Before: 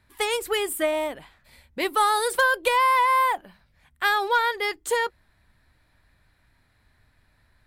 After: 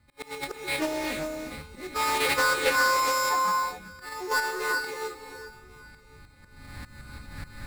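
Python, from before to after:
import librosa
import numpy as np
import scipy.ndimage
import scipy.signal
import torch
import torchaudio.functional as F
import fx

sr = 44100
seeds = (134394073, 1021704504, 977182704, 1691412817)

p1 = fx.freq_snap(x, sr, grid_st=3)
p2 = fx.recorder_agc(p1, sr, target_db=-12.5, rise_db_per_s=13.0, max_gain_db=30)
p3 = fx.curve_eq(p2, sr, hz=(230.0, 620.0, 1600.0, 3000.0, 4200.0, 6300.0, 14000.0), db=(0, -13, -10, -29, -12, -2, -20))
p4 = p3 + fx.echo_single(p3, sr, ms=1094, db=-23.5, dry=0)
p5 = fx.sample_hold(p4, sr, seeds[0], rate_hz=6200.0, jitter_pct=0)
p6 = fx.level_steps(p5, sr, step_db=16)
p7 = p5 + (p6 * librosa.db_to_amplitude(-2.5))
p8 = fx.auto_swell(p7, sr, attack_ms=350.0)
p9 = fx.rev_gated(p8, sr, seeds[1], gate_ms=440, shape='rising', drr_db=3.5)
p10 = fx.doppler_dist(p9, sr, depth_ms=0.24)
y = p10 * librosa.db_to_amplitude(2.0)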